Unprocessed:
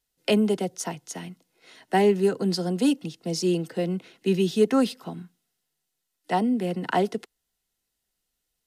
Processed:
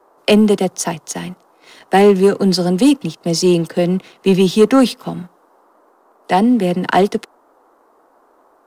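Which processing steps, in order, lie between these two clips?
noise in a band 270–1,200 Hz −59 dBFS
leveller curve on the samples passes 1
level +7.5 dB

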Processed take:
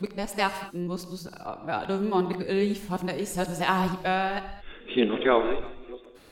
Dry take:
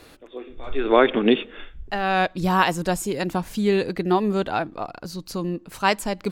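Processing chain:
played backwards from end to start
reverb whose tail is shaped and stops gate 240 ms flat, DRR 9 dB
level −5.5 dB

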